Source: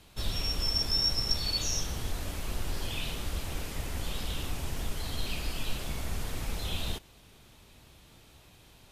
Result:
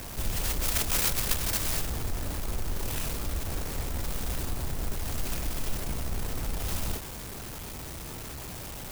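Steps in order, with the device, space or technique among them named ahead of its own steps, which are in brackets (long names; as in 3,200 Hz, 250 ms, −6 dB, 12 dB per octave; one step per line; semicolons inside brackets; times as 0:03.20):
early CD player with a faulty converter (converter with a step at zero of −34 dBFS; converter with an unsteady clock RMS 0.097 ms)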